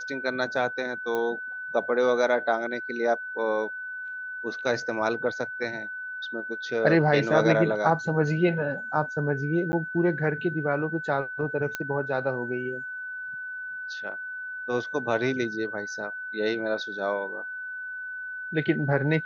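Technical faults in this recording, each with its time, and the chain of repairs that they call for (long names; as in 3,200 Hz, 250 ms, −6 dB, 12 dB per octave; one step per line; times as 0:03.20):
whistle 1,500 Hz −33 dBFS
0:01.15: click −17 dBFS
0:09.72–0:09.73: drop-out 10 ms
0:11.75: click −14 dBFS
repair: click removal
notch filter 1,500 Hz, Q 30
repair the gap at 0:09.72, 10 ms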